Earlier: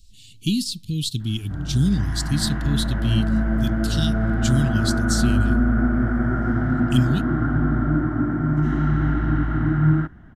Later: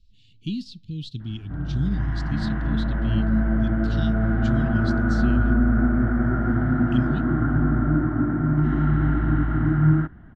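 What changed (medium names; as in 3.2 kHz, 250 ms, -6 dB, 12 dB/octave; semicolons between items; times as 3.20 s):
speech -6.5 dB; master: add distance through air 220 m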